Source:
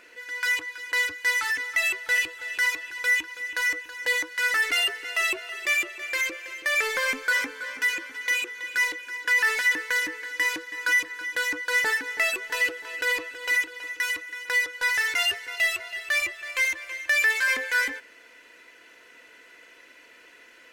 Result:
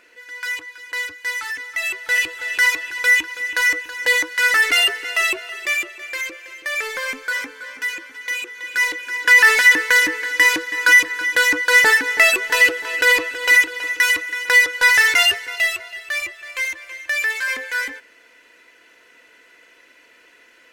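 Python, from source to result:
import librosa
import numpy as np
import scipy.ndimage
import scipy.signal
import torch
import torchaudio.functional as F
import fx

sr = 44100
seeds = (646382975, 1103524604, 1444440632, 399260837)

y = fx.gain(x, sr, db=fx.line((1.72, -1.0), (2.38, 8.0), (4.92, 8.0), (6.19, 0.0), (8.36, 0.0), (9.32, 11.0), (15.09, 11.0), (16.0, 0.5)))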